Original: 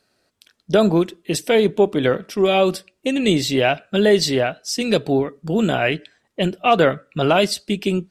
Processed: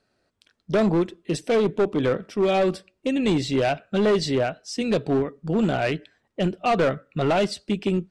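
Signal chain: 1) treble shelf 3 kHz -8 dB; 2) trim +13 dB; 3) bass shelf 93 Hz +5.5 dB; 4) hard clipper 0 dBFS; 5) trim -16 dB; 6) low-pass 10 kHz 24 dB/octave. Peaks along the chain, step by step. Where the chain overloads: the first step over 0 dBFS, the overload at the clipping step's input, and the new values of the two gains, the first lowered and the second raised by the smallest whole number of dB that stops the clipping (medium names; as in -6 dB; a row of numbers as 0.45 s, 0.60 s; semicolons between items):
-4.5 dBFS, +8.5 dBFS, +9.0 dBFS, 0.0 dBFS, -16.0 dBFS, -15.5 dBFS; step 2, 9.0 dB; step 2 +4 dB, step 5 -7 dB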